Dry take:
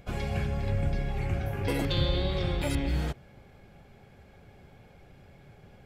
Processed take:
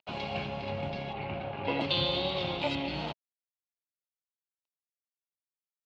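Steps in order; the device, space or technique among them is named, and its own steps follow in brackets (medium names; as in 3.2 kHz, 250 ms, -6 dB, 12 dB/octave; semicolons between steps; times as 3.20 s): blown loudspeaker (crossover distortion -42 dBFS; cabinet simulation 180–4900 Hz, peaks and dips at 400 Hz -4 dB, 640 Hz +6 dB, 920 Hz +8 dB, 1.7 kHz -7 dB, 2.8 kHz +10 dB, 4.1 kHz +7 dB); 1.13–1.81 s: low-pass 2.9 kHz 12 dB/octave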